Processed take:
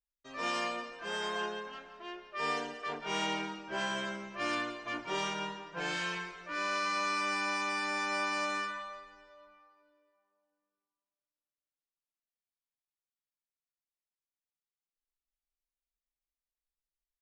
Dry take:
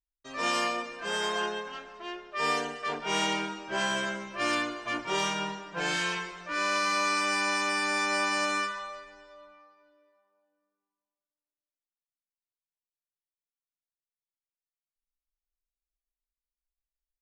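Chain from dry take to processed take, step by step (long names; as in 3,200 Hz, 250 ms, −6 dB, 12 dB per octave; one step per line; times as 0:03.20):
high-frequency loss of the air 52 metres
single-tap delay 170 ms −15 dB
level −5 dB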